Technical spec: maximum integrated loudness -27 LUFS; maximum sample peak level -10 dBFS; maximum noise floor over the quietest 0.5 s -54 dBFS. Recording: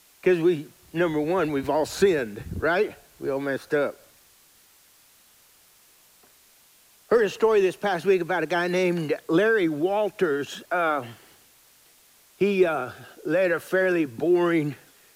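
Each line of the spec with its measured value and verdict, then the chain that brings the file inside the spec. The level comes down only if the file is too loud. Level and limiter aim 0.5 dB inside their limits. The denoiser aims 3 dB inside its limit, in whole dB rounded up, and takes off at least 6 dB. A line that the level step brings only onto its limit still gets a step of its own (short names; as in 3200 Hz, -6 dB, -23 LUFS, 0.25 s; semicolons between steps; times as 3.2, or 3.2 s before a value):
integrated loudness -24.0 LUFS: fail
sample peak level -8.0 dBFS: fail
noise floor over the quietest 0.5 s -57 dBFS: OK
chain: gain -3.5 dB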